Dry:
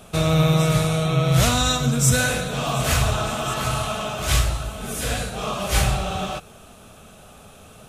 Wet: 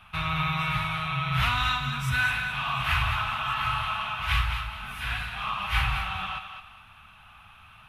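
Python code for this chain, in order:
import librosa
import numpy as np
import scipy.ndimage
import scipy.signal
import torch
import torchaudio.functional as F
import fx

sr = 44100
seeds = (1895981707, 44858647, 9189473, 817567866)

p1 = fx.curve_eq(x, sr, hz=(100.0, 520.0, 910.0, 1800.0, 2700.0, 7400.0, 11000.0), db=(0, -25, 6, 6, 8, -22, -11))
p2 = p1 + fx.echo_thinned(p1, sr, ms=212, feedback_pct=30, hz=540.0, wet_db=-7.5, dry=0)
y = F.gain(torch.from_numpy(p2), -6.5).numpy()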